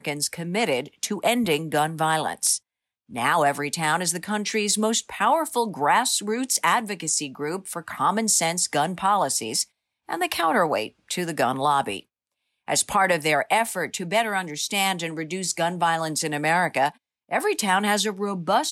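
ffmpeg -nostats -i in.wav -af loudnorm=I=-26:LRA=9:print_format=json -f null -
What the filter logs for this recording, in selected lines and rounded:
"input_i" : "-23.3",
"input_tp" : "-8.2",
"input_lra" : "1.3",
"input_thresh" : "-33.5",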